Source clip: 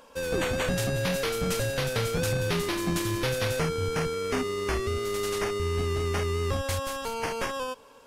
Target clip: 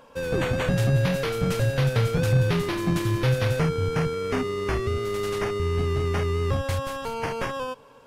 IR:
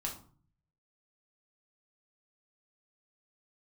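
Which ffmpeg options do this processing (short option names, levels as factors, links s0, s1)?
-filter_complex "[0:a]equalizer=f=130:t=o:w=0.58:g=10,asplit=2[s0][s1];[s1]adynamicsmooth=sensitivity=0.5:basefreq=4500,volume=1.12[s2];[s0][s2]amix=inputs=2:normalize=0,volume=0.596"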